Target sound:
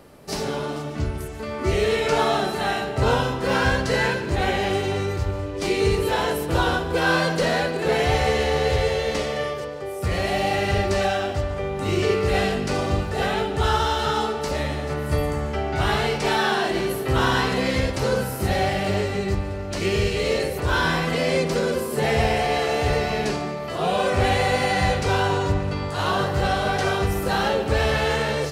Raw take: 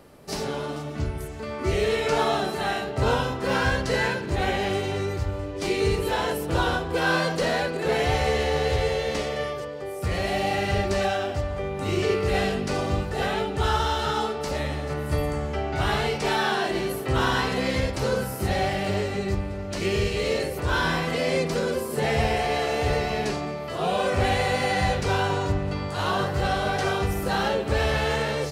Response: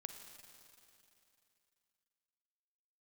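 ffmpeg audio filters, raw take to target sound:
-filter_complex "[0:a]asplit=2[a][b];[1:a]atrim=start_sample=2205,adelay=145[c];[b][c]afir=irnorm=-1:irlink=0,volume=-10dB[d];[a][d]amix=inputs=2:normalize=0,volume=2.5dB"

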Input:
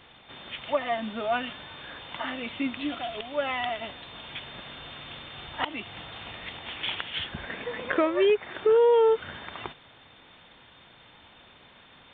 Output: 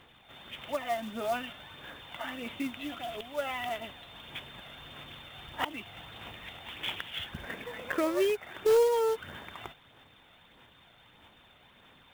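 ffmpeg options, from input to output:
-af "aphaser=in_gain=1:out_gain=1:delay=1.5:decay=0.33:speed=1.6:type=sinusoidal,acrusher=bits=4:mode=log:mix=0:aa=0.000001,volume=-6dB"

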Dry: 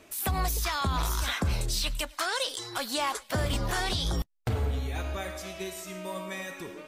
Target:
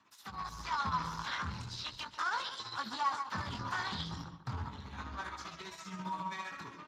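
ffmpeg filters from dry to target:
-filter_complex "[0:a]asplit=2[a][b];[b]adelay=145,lowpass=f=2.9k:p=1,volume=-11dB,asplit=2[c][d];[d]adelay=145,lowpass=f=2.9k:p=1,volume=0.29,asplit=2[e][f];[f]adelay=145,lowpass=f=2.9k:p=1,volume=0.29[g];[a][c][e][g]amix=inputs=4:normalize=0,tremolo=f=15:d=0.8,highshelf=f=3.9k:g=-12,asoftclip=type=tanh:threshold=-32.5dB,flanger=delay=18.5:depth=6.4:speed=0.37,highpass=f=77:p=1,dynaudnorm=f=110:g=9:m=8.5dB,firequalizer=gain_entry='entry(180,0);entry(370,-11);entry(640,-15);entry(920,8);entry(2400,-2);entry(4100,9);entry(8700,-2)':delay=0.05:min_phase=1,acrossover=split=3800[h][i];[i]acompressor=threshold=-43dB:ratio=4:attack=1:release=60[j];[h][j]amix=inputs=2:normalize=0,volume=-3.5dB" -ar 32000 -c:a libspeex -b:a 15k

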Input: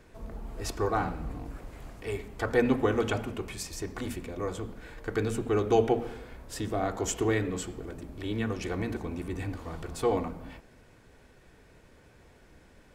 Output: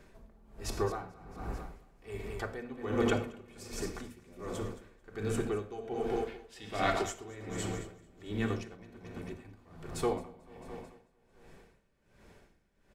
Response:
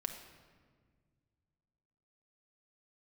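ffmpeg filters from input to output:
-filter_complex "[0:a]asettb=1/sr,asplit=3[a][b][c];[a]atrim=end=6.274[d];[b]atrim=start=6.27:end=7.02,asetpts=PTS-STARTPTS,afade=t=in:d=0.004:c=qsin,afade=t=out:st=0.746:d=0.004:c=qsin,equalizer=f=2.8k:w=0.64:g=15[e];[c]atrim=start=7.016[f];[d][e]acrossfade=d=0.004:c1=hsin:c2=qsin[g];[g][f]acrossfade=d=0.004:c1=qsin:c2=hsin,asettb=1/sr,asplit=3[h][i][j];[h]atrim=end=8.634[k];[i]atrim=start=8.63:end=9.45,asetpts=PTS-STARTPTS,afade=t=in:d=0.004:c=qsin,afade=t=out:st=0.816:d=0.004:c=qsin,agate=range=-9dB:threshold=-32dB:ratio=16:detection=peak[l];[j]atrim=start=9.446[m];[k][l]acrossfade=d=0.004:c1=hsin:c2=qsin[n];[n][m]acrossfade=d=0.004:c1=qsin:c2=hsin,aecho=1:1:221|442|663|884|1105|1326|1547:0.335|0.198|0.117|0.0688|0.0406|0.0239|0.0141[o];[1:a]atrim=start_sample=2205,atrim=end_sample=6174[p];[o][p]afir=irnorm=-1:irlink=0,aeval=exprs='val(0)*pow(10,-20*(0.5-0.5*cos(2*PI*1.3*n/s))/20)':c=same"

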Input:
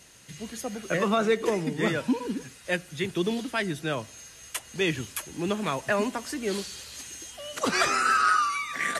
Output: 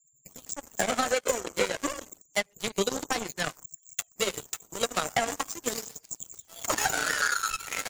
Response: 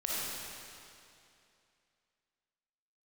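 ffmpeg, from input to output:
-filter_complex "[0:a]highshelf=f=3.8k:g=-3,asplit=2[a][b];[b]adelay=136,lowpass=f=2.2k:p=1,volume=-16dB,asplit=2[c][d];[d]adelay=136,lowpass=f=2.2k:p=1,volume=0.27,asplit=2[e][f];[f]adelay=136,lowpass=f=2.2k:p=1,volume=0.27[g];[a][c][e][g]amix=inputs=4:normalize=0,flanger=delay=7.3:depth=4.9:regen=30:speed=0.74:shape=sinusoidal,asplit=2[h][i];[1:a]atrim=start_sample=2205,afade=t=out:st=0.15:d=0.01,atrim=end_sample=7056[j];[i][j]afir=irnorm=-1:irlink=0,volume=-13dB[k];[h][k]amix=inputs=2:normalize=0,aphaser=in_gain=1:out_gain=1:delay=2.6:decay=0.52:speed=0.29:type=triangular,lowpass=f=6.1k:t=q:w=12,afftfilt=real='re*gte(hypot(re,im),0.0126)':imag='im*gte(hypot(re,im),0.0126)':win_size=1024:overlap=0.75,asetrate=50274,aresample=44100,acrossover=split=410|1300[l][m][n];[l]acompressor=threshold=-40dB:ratio=4[o];[m]acompressor=threshold=-29dB:ratio=4[p];[n]acompressor=threshold=-35dB:ratio=4[q];[o][p][q]amix=inputs=3:normalize=0,aeval=exprs='0.15*(cos(1*acos(clip(val(0)/0.15,-1,1)))-cos(1*PI/2))+0.00119*(cos(5*acos(clip(val(0)/0.15,-1,1)))-cos(5*PI/2))+0.0237*(cos(7*acos(clip(val(0)/0.15,-1,1)))-cos(7*PI/2))':c=same,acompressor=threshold=-29dB:ratio=6,volume=8dB"

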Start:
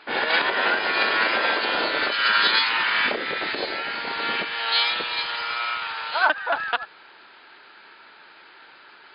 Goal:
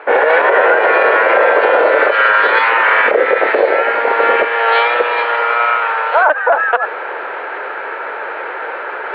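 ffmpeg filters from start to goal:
-af "lowpass=f=2.1k:w=0.5412,lowpass=f=2.1k:w=1.3066,areverse,acompressor=mode=upward:threshold=-28dB:ratio=2.5,areverse,highpass=f=500:t=q:w=4.1,alimiter=level_in=14.5dB:limit=-1dB:release=50:level=0:latency=1,volume=-1dB"

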